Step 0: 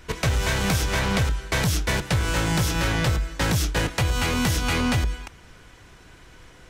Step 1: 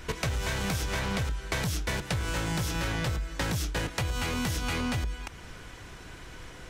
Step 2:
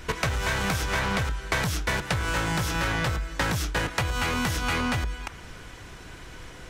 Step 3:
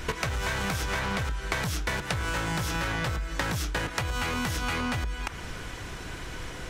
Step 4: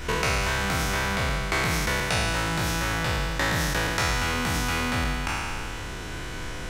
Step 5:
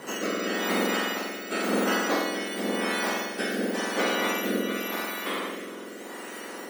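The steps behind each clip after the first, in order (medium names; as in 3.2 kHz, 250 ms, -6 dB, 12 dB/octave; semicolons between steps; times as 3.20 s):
compression 3:1, threshold -35 dBFS, peak gain reduction 12 dB; trim +3.5 dB
dynamic bell 1.3 kHz, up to +6 dB, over -47 dBFS, Q 0.72; trim +2 dB
compression 4:1, threshold -33 dBFS, peak gain reduction 10 dB; trim +5 dB
spectral sustain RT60 2.30 s
spectrum inverted on a logarithmic axis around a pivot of 1.7 kHz; rotary cabinet horn 0.9 Hz; trim +2 dB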